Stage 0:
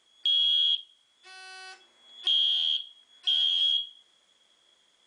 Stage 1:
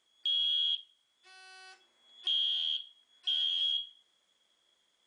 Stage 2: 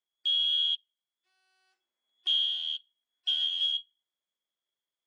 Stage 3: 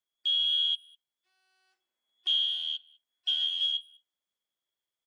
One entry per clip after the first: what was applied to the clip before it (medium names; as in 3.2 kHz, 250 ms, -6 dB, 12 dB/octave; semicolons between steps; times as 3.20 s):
dynamic bell 2 kHz, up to +4 dB, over -39 dBFS, Q 1; trim -8 dB
upward expansion 2.5:1, over -45 dBFS; trim +4.5 dB
speakerphone echo 200 ms, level -24 dB